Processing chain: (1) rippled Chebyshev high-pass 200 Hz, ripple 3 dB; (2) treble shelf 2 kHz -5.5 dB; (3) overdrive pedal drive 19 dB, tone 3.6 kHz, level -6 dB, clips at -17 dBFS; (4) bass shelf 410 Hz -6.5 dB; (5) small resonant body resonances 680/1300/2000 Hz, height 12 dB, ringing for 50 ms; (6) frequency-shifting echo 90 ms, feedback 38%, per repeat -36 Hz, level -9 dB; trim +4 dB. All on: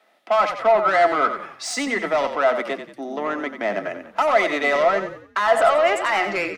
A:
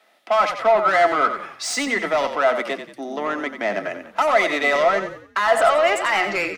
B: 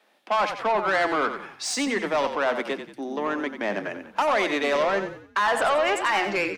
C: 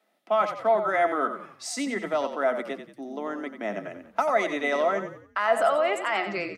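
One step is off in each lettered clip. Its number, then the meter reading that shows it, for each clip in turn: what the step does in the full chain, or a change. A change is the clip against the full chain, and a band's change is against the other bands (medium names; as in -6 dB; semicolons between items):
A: 2, 8 kHz band +2.5 dB; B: 5, 500 Hz band -5.5 dB; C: 3, 125 Hz band +3.0 dB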